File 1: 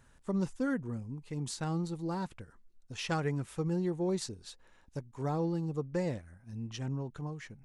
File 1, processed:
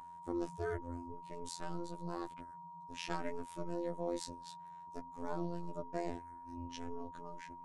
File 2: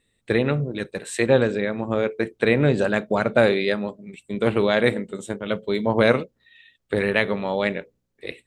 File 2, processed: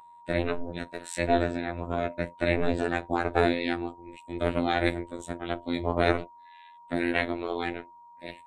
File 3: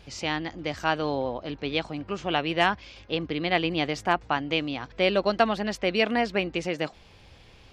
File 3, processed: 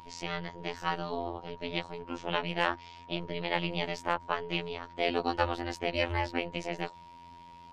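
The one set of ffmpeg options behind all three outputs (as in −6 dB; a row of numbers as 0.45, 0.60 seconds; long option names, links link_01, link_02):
-af "aeval=exprs='val(0)*sin(2*PI*150*n/s)':channel_layout=same,aeval=exprs='val(0)+0.00708*sin(2*PI*970*n/s)':channel_layout=same,afftfilt=real='hypot(re,im)*cos(PI*b)':imag='0':win_size=2048:overlap=0.75"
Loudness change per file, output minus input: −7.5, −7.0, −6.5 LU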